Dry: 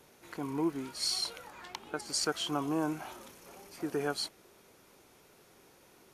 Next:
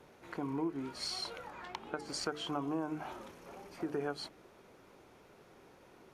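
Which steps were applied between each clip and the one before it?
low-pass filter 1,700 Hz 6 dB per octave
mains-hum notches 50/100/150/200/250/300/350/400/450 Hz
downward compressor 2.5 to 1, threshold −39 dBFS, peak gain reduction 8.5 dB
level +3.5 dB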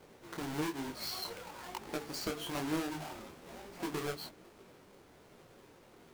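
each half-wave held at its own peak
micro pitch shift up and down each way 38 cents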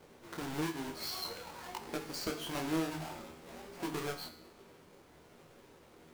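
tuned comb filter 80 Hz, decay 0.76 s, harmonics all, mix 70%
level +8 dB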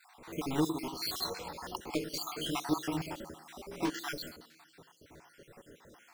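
time-frequency cells dropped at random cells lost 54%
on a send at −18.5 dB: loudspeaker in its box 160–7,700 Hz, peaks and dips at 170 Hz +7 dB, 320 Hz +9 dB, 530 Hz +8 dB, 1,000 Hz −10 dB, 1,600 Hz −4 dB, 2,800 Hz +6 dB + convolution reverb RT60 0.85 s, pre-delay 7 ms
on the sum: level +6 dB

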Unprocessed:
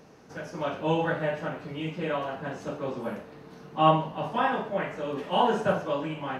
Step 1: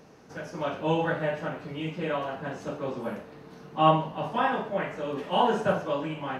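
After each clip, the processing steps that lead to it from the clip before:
no processing that can be heard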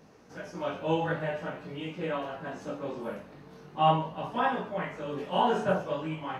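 multi-voice chorus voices 2, 0.45 Hz, delay 19 ms, depth 2.7 ms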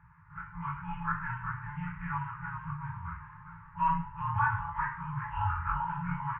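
echo with shifted repeats 397 ms, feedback 35%, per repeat +100 Hz, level −9.5 dB
single-sideband voice off tune −140 Hz 220–2,000 Hz
brick-wall band-stop 180–850 Hz
level +4 dB

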